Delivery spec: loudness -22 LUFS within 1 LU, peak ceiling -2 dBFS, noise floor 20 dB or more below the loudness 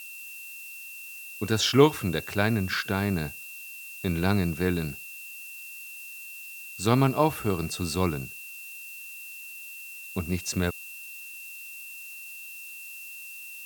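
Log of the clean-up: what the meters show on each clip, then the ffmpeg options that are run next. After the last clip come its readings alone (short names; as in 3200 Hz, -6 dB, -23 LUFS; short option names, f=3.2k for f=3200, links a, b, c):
steady tone 2700 Hz; tone level -41 dBFS; noise floor -42 dBFS; noise floor target -50 dBFS; loudness -29.5 LUFS; peak -4.5 dBFS; loudness target -22.0 LUFS
-> -af "bandreject=f=2.7k:w=30"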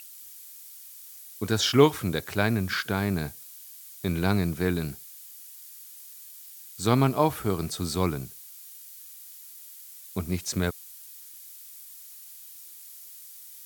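steady tone none; noise floor -46 dBFS; noise floor target -47 dBFS
-> -af "afftdn=nr=6:nf=-46"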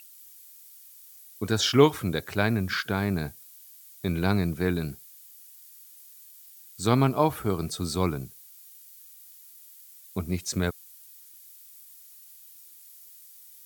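noise floor -51 dBFS; loudness -27.0 LUFS; peak -4.5 dBFS; loudness target -22.0 LUFS
-> -af "volume=5dB,alimiter=limit=-2dB:level=0:latency=1"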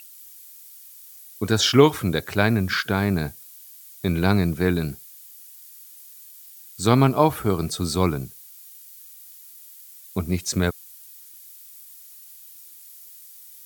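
loudness -22.0 LUFS; peak -2.0 dBFS; noise floor -46 dBFS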